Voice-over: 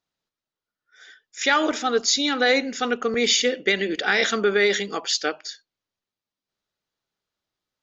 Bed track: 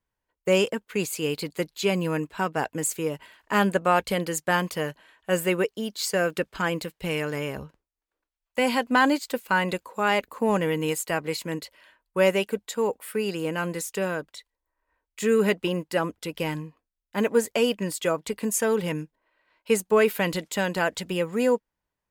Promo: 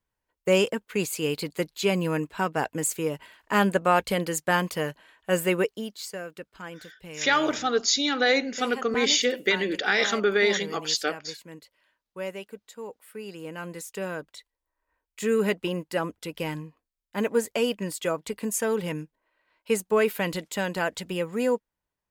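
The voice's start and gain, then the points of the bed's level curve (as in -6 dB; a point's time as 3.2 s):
5.80 s, -2.5 dB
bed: 5.7 s 0 dB
6.24 s -13.5 dB
12.94 s -13.5 dB
14.37 s -2.5 dB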